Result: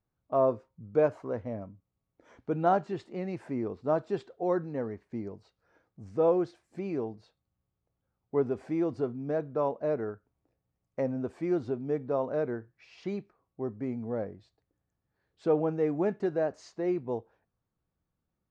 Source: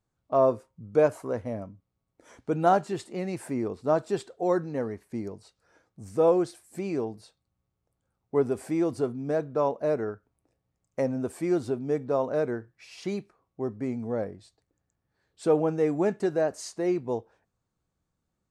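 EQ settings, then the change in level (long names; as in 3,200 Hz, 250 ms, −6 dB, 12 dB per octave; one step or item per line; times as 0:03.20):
high-frequency loss of the air 330 metres
parametric band 7,000 Hz +11.5 dB 0.96 octaves
−2.5 dB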